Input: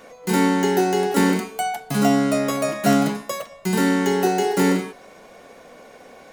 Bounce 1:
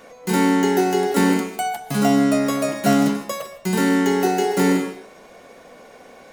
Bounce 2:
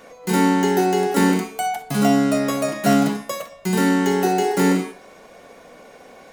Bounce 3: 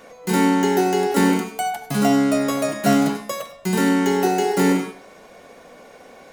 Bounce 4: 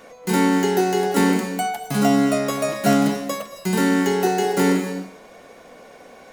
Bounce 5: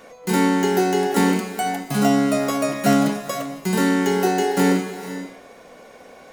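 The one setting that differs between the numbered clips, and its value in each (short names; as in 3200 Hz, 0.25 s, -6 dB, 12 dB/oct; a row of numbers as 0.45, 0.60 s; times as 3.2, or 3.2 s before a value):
non-linear reverb, gate: 180, 80, 120, 290, 530 ms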